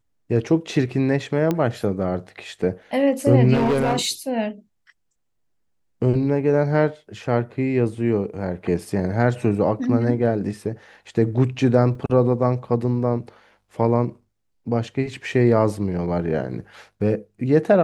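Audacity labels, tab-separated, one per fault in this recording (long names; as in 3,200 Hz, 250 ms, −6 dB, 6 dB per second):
1.510000	1.510000	click −10 dBFS
3.530000	4.070000	clipping −15.5 dBFS
11.950000	11.950000	drop-out 3.4 ms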